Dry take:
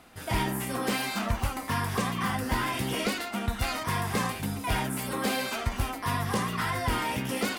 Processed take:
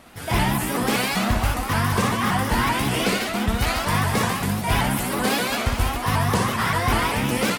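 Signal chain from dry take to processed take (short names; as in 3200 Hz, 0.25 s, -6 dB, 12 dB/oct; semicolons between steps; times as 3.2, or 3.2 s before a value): reverse bouncing-ball echo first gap 60 ms, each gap 1.5×, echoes 5; shaped vibrato saw up 5.2 Hz, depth 160 cents; gain +5.5 dB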